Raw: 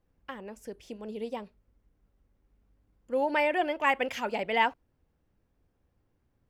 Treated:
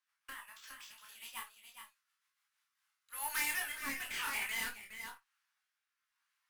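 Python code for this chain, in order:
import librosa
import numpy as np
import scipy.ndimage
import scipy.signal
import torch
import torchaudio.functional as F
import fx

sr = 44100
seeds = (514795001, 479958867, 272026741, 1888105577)

y = np.repeat(x[::4], 4)[:len(x)]
y = scipy.signal.sosfilt(scipy.signal.butter(6, 1100.0, 'highpass', fs=sr, output='sos'), y)
y = fx.tube_stage(y, sr, drive_db=38.0, bias=0.25)
y = fx.high_shelf(y, sr, hz=3900.0, db=5.0, at=(1.35, 3.6))
y = fx.quant_float(y, sr, bits=2)
y = y + 10.0 ** (-7.0 / 20.0) * np.pad(y, (int(414 * sr / 1000.0), 0))[:len(y)]
y = fx.rotary_switch(y, sr, hz=7.0, then_hz=1.0, switch_at_s=2.23)
y = fx.chorus_voices(y, sr, voices=2, hz=0.58, base_ms=29, depth_ms=1.6, mix_pct=40)
y = fx.room_early_taps(y, sr, ms=(18, 55), db=(-5.0, -13.5))
y = F.gain(torch.from_numpy(y), 7.5).numpy()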